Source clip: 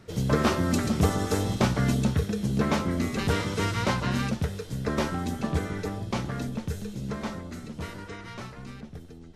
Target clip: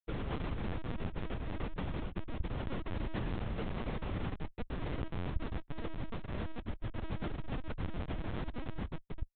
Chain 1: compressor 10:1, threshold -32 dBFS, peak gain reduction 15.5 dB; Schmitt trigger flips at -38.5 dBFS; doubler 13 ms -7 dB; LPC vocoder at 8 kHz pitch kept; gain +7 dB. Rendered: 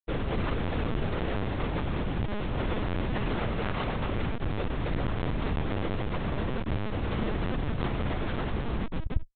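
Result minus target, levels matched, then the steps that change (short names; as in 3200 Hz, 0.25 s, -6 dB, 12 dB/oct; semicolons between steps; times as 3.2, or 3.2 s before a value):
compressor: peak gain reduction -7 dB
change: compressor 10:1, threshold -40 dBFS, peak gain reduction 22.5 dB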